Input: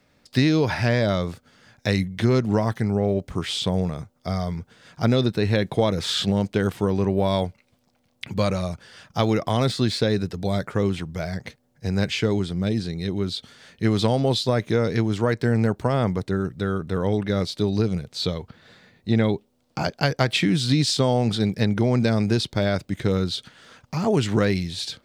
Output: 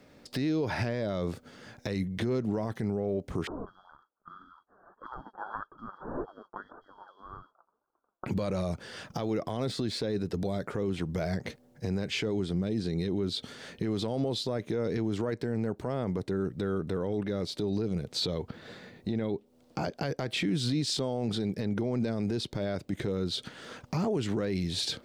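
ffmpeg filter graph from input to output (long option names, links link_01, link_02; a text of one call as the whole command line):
ffmpeg -i in.wav -filter_complex "[0:a]asettb=1/sr,asplit=3[link_01][link_02][link_03];[link_01]atrim=end=3.474[link_04];[link_02]atrim=start=3.47:end=8.26,asetpts=PTS-STARTPTS,afade=type=in:duration=0.004:curve=qsin,afade=type=out:start_time=4.786:duration=0.004:curve=qsin,lowpass=frequency=2900:width_type=q:width=0.5098,lowpass=frequency=2900:width_type=q:width=0.6013,lowpass=frequency=2900:width_type=q:width=0.9,lowpass=frequency=2900:width_type=q:width=2.563,afreqshift=-3400,flanger=delay=2.1:depth=4.1:regen=43:speed=1.8:shape=triangular,asuperstop=centerf=2600:order=12:qfactor=0.86[link_05];[link_03]atrim=start=8.256[link_06];[link_04][link_05]acrossfade=duration=0.004:curve1=hsin:curve2=qsin[link_07];[link_07][link_06]acrossfade=duration=0.004:curve1=qsin:curve2=hsin,equalizer=frequency=370:width=0.67:gain=7.5,acompressor=threshold=-27dB:ratio=4,alimiter=limit=-23dB:level=0:latency=1:release=21,volume=1.5dB" out.wav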